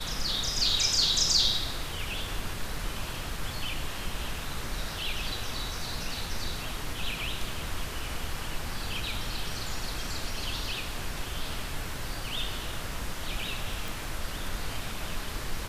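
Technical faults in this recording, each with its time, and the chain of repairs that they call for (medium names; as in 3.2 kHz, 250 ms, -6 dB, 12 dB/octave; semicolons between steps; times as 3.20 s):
13.88 s: pop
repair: de-click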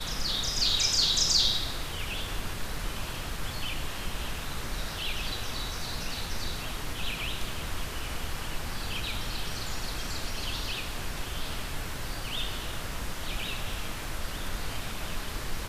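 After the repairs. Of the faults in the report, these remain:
nothing left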